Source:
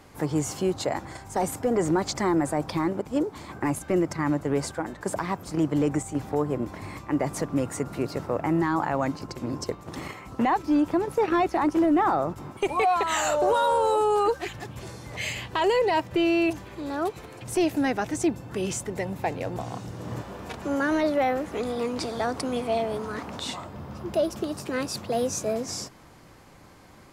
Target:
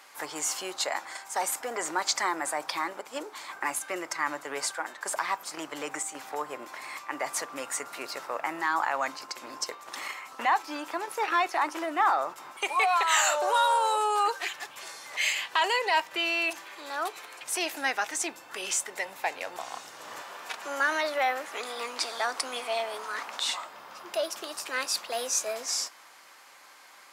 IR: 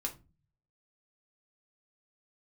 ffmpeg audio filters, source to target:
-filter_complex "[0:a]highpass=1.1k,asplit=2[a][b];[1:a]atrim=start_sample=2205[c];[b][c]afir=irnorm=-1:irlink=0,volume=-11.5dB[d];[a][d]amix=inputs=2:normalize=0,volume=3dB"

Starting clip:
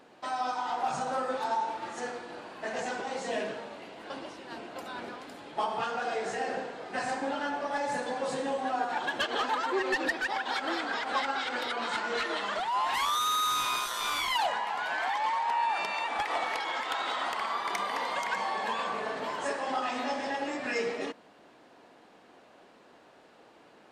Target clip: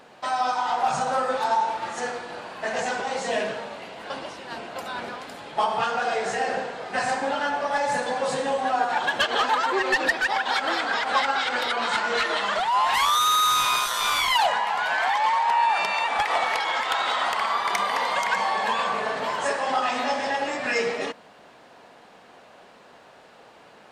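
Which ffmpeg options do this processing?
-af "equalizer=f=310:t=o:w=0.73:g=-8,volume=8dB"

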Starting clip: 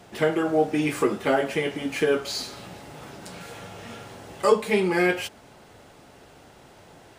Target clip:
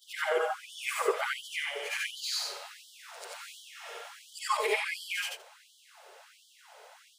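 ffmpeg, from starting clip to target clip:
-af "afftfilt=real='re':imag='-im':win_size=8192:overlap=0.75,afftfilt=real='re*gte(b*sr/1024,380*pow(3000/380,0.5+0.5*sin(2*PI*1.4*pts/sr)))':imag='im*gte(b*sr/1024,380*pow(3000/380,0.5+0.5*sin(2*PI*1.4*pts/sr)))':win_size=1024:overlap=0.75,volume=3.5dB"

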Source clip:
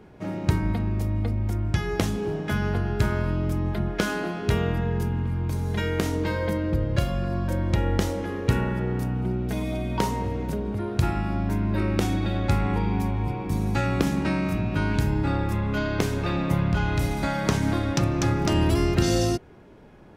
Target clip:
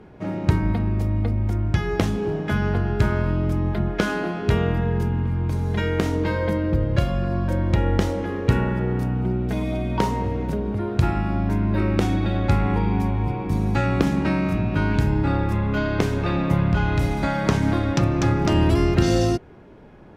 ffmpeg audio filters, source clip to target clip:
-af "aemphasis=mode=reproduction:type=cd,volume=3dB"

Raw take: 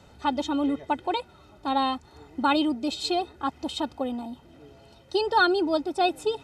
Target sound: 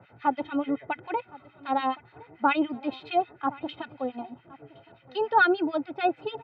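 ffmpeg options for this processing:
-filter_complex "[0:a]acrossover=split=1400[a][b];[a]aeval=exprs='val(0)*(1-1/2+1/2*cos(2*PI*6.9*n/s))':c=same[c];[b]aeval=exprs='val(0)*(1-1/2-1/2*cos(2*PI*6.9*n/s))':c=same[d];[c][d]amix=inputs=2:normalize=0,highpass=f=110:w=0.5412,highpass=f=110:w=1.3066,equalizer=f=120:t=q:w=4:g=8,equalizer=f=220:t=q:w=4:g=-5,equalizer=f=690:t=q:w=4:g=4,equalizer=f=1.5k:t=q:w=4:g=5,equalizer=f=2.2k:t=q:w=4:g=8,lowpass=f=2.9k:w=0.5412,lowpass=f=2.9k:w=1.3066,aecho=1:1:1066:0.0794,volume=2dB"

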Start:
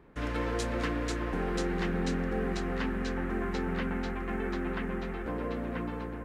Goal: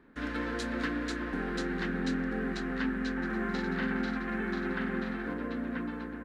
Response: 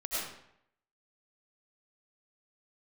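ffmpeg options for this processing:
-filter_complex "[0:a]equalizer=f=100:t=o:w=0.67:g=-9,equalizer=f=250:t=o:w=0.67:g=11,equalizer=f=1.6k:t=o:w=0.67:g=10,equalizer=f=4k:t=o:w=0.67:g=7,asplit=3[a][b][c];[a]afade=t=out:st=3.21:d=0.02[d];[b]aecho=1:1:40|96|174.4|284.2|437.8:0.631|0.398|0.251|0.158|0.1,afade=t=in:st=3.21:d=0.02,afade=t=out:st=5.33:d=0.02[e];[c]afade=t=in:st=5.33:d=0.02[f];[d][e][f]amix=inputs=3:normalize=0,volume=-6.5dB"

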